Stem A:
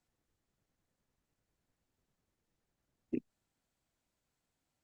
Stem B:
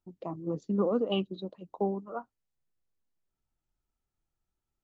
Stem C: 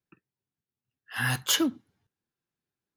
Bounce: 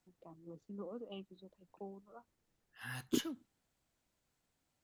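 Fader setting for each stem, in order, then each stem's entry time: +2.0, −18.5, −17.5 decibels; 0.00, 0.00, 1.65 seconds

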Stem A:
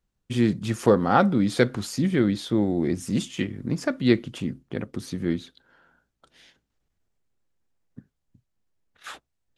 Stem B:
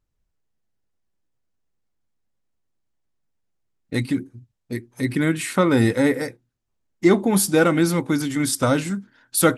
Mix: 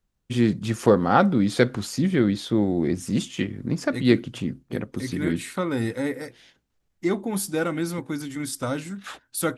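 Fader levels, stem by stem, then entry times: +1.0, −8.5 decibels; 0.00, 0.00 seconds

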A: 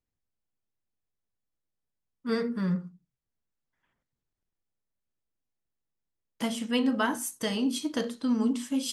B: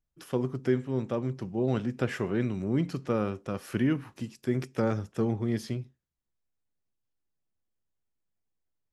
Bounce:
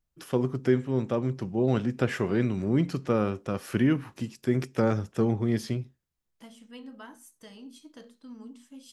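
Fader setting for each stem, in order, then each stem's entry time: −18.5, +3.0 decibels; 0.00, 0.00 seconds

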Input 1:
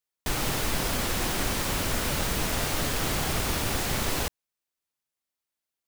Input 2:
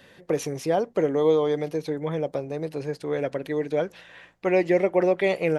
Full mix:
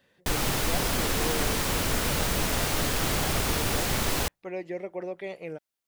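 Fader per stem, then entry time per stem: +1.0, −14.0 decibels; 0.00, 0.00 seconds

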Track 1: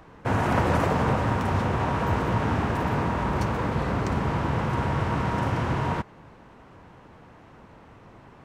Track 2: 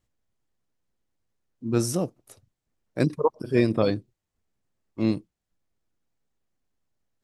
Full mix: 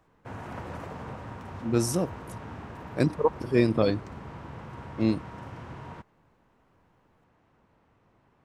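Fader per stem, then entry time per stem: −16.0, −1.0 decibels; 0.00, 0.00 seconds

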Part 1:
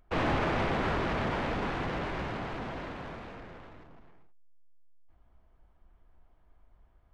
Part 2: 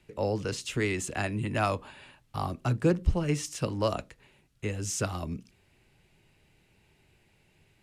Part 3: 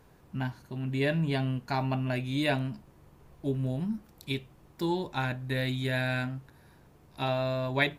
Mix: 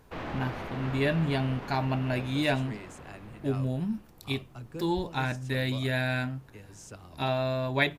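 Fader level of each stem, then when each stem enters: −8.5, −16.0, +1.0 decibels; 0.00, 1.90, 0.00 seconds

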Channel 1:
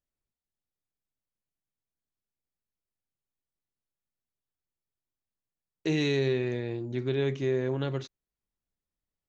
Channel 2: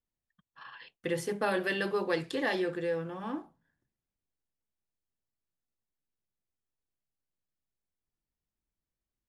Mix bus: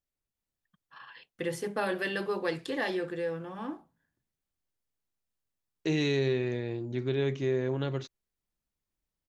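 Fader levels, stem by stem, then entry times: −1.0, −1.0 decibels; 0.00, 0.35 seconds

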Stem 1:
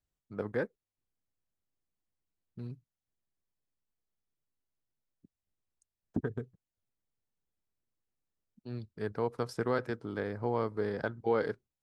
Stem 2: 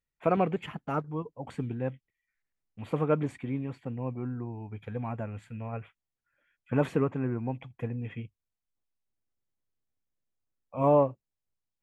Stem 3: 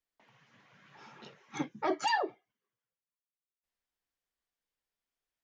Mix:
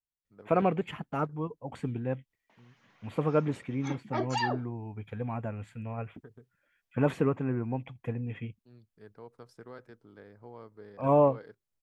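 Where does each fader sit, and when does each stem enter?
−16.0, 0.0, −1.0 decibels; 0.00, 0.25, 2.30 seconds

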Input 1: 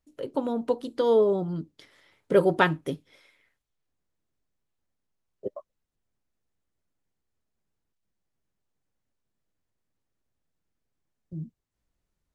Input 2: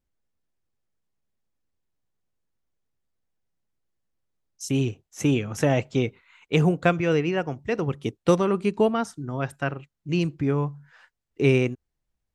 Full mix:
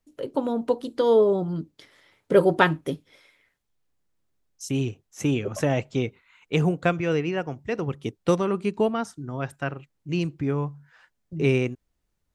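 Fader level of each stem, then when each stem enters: +2.5, −2.0 decibels; 0.00, 0.00 seconds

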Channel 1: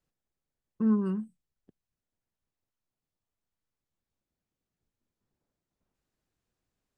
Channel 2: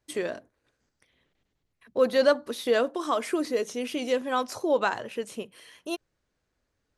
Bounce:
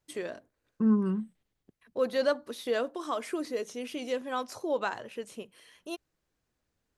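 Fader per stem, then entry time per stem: +1.0, −6.0 decibels; 0.00, 0.00 seconds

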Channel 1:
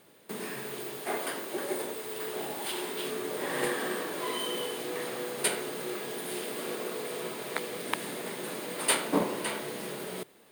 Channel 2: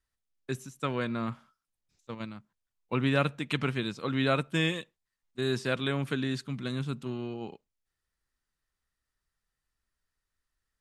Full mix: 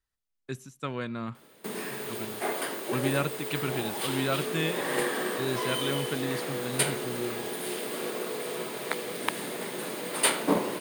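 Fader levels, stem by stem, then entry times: +2.0, −2.5 decibels; 1.35, 0.00 seconds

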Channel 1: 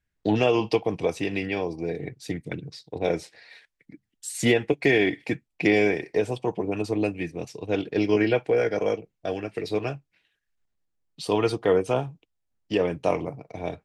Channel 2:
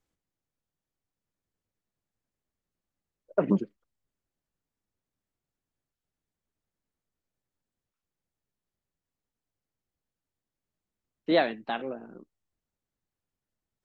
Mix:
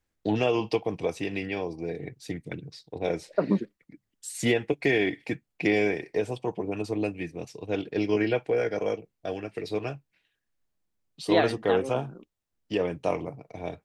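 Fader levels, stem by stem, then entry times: −3.5, 0.0 decibels; 0.00, 0.00 seconds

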